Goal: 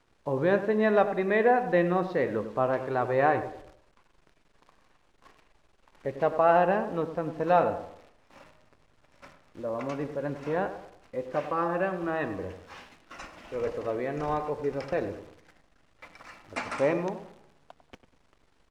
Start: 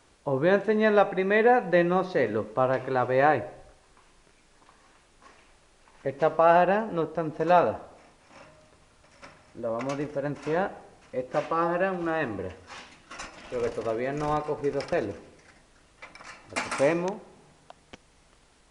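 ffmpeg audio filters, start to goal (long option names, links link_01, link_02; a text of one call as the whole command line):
ffmpeg -i in.wav -filter_complex "[0:a]acrusher=bits=9:dc=4:mix=0:aa=0.000001,aemphasis=mode=reproduction:type=50fm,asplit=2[link_01][link_02];[link_02]adelay=98,lowpass=frequency=1700:poles=1,volume=-11dB,asplit=2[link_03][link_04];[link_04]adelay=98,lowpass=frequency=1700:poles=1,volume=0.39,asplit=2[link_05][link_06];[link_06]adelay=98,lowpass=frequency=1700:poles=1,volume=0.39,asplit=2[link_07][link_08];[link_08]adelay=98,lowpass=frequency=1700:poles=1,volume=0.39[link_09];[link_01][link_03][link_05][link_07][link_09]amix=inputs=5:normalize=0,volume=-2.5dB" out.wav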